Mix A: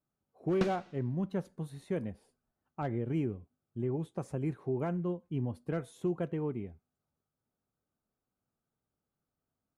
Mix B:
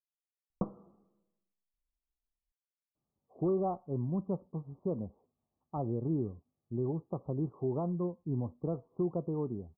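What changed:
speech: entry +2.95 s
master: add Butterworth low-pass 1,200 Hz 96 dB per octave

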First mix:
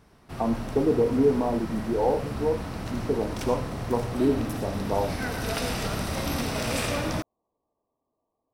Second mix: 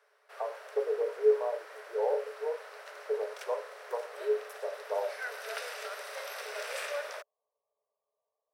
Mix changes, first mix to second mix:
background: send −9.0 dB
master: add Chebyshev high-pass with heavy ripple 410 Hz, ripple 9 dB

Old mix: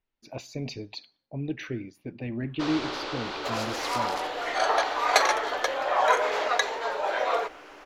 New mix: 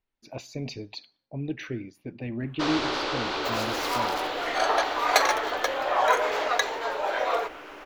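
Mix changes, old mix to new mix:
first sound +5.0 dB
second sound: remove low-pass filter 11,000 Hz 12 dB per octave

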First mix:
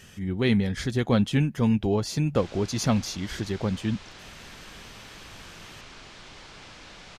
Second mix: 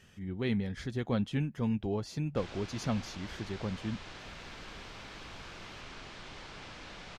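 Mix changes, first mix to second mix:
speech −9.0 dB
master: add high-shelf EQ 5,700 Hz −9 dB

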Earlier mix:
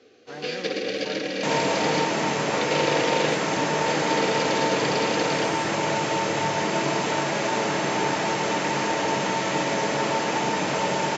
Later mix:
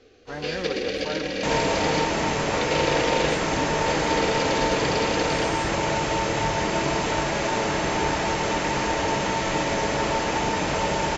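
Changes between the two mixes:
speech +5.5 dB
master: remove high-pass filter 130 Hz 24 dB per octave

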